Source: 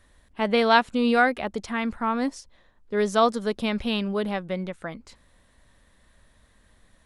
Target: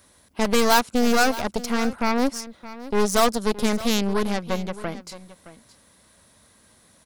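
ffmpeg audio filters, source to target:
-filter_complex "[0:a]highpass=110,bandreject=f=1.8k:w=7.7,asplit=2[a][b];[b]acompressor=threshold=-33dB:ratio=6,volume=-2dB[c];[a][c]amix=inputs=2:normalize=0,aeval=exprs='0.531*(cos(1*acos(clip(val(0)/0.531,-1,1)))-cos(1*PI/2))+0.0841*(cos(8*acos(clip(val(0)/0.531,-1,1)))-cos(8*PI/2))':c=same,asoftclip=type=hard:threshold=-11.5dB,aexciter=amount=2.1:drive=5.8:freq=4.6k,asplit=2[d][e];[e]aecho=0:1:619:0.158[f];[d][f]amix=inputs=2:normalize=0"

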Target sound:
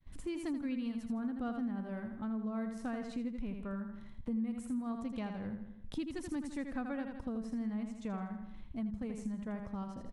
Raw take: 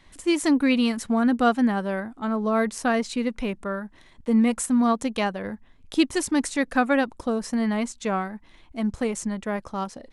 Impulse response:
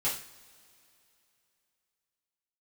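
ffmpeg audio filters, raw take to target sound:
-af "highshelf=f=4.9k:g=9.5,agate=range=-33dB:threshold=-47dB:ratio=3:detection=peak,firequalizer=gain_entry='entry(130,0);entry(360,-13);entry(6900,-28)':delay=0.05:min_phase=1,aecho=1:1:81|162|243|324|405:0.447|0.174|0.0679|0.0265|0.0103,acompressor=threshold=-48dB:ratio=3,volume=7dB"

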